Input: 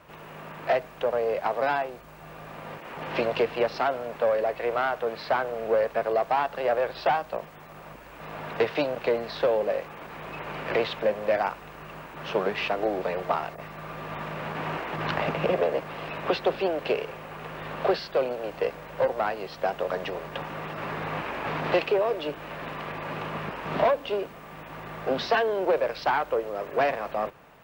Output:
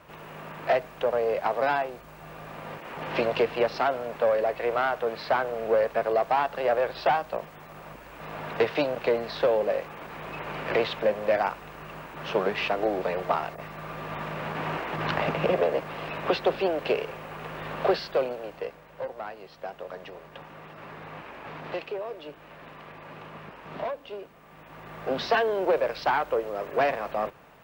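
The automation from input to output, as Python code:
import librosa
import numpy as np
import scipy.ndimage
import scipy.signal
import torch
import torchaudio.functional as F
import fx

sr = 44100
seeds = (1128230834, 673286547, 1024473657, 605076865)

y = fx.gain(x, sr, db=fx.line((18.12, 0.5), (18.84, -10.0), (24.33, -10.0), (25.3, 0.0)))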